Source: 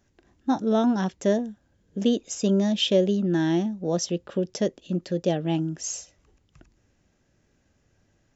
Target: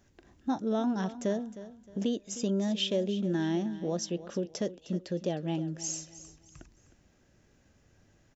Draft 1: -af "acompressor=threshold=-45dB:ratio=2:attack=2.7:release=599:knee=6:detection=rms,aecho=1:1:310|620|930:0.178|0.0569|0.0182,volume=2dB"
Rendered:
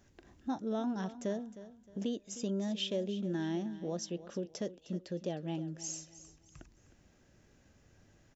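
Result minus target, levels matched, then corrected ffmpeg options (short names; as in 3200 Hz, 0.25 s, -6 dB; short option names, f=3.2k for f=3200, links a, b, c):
compressor: peak gain reduction +5.5 dB
-af "acompressor=threshold=-34dB:ratio=2:attack=2.7:release=599:knee=6:detection=rms,aecho=1:1:310|620|930:0.178|0.0569|0.0182,volume=2dB"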